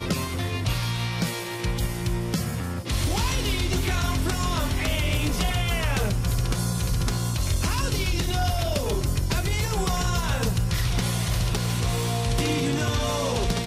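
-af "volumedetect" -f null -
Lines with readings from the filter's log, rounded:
mean_volume: -24.5 dB
max_volume: -16.2 dB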